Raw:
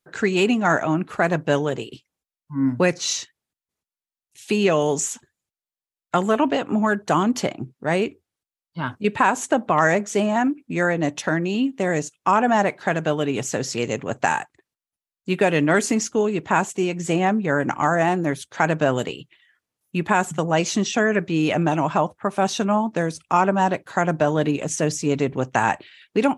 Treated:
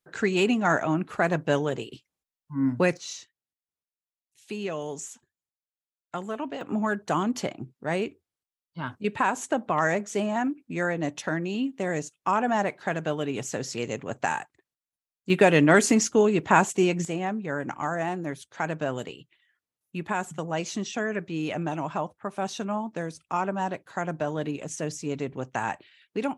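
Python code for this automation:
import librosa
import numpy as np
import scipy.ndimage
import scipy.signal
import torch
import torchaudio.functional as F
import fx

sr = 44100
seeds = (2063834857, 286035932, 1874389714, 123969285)

y = fx.gain(x, sr, db=fx.steps((0.0, -4.0), (2.97, -13.5), (6.61, -6.5), (15.3, 0.5), (17.05, -9.5)))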